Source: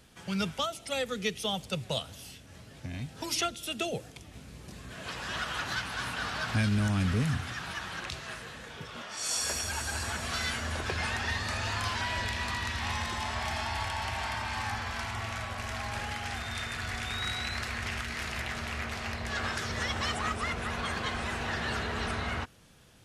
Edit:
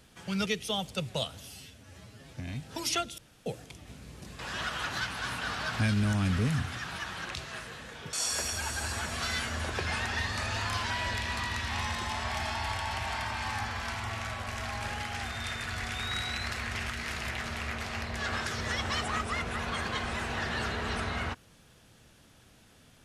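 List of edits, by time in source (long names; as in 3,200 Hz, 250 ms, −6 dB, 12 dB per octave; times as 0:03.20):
0:00.46–0:01.21: remove
0:02.23–0:02.81: time-stretch 1.5×
0:03.64–0:03.92: fill with room tone
0:04.85–0:05.14: remove
0:08.88–0:09.24: remove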